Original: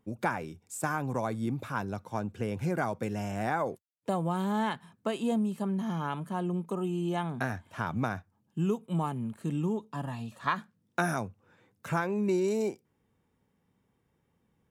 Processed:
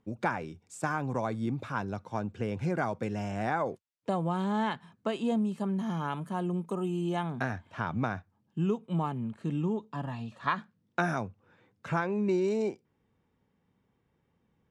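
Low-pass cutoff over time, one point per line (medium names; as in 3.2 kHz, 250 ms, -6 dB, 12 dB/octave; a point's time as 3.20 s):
5.32 s 6.2 kHz
5.97 s 11 kHz
6.96 s 11 kHz
7.62 s 4.9 kHz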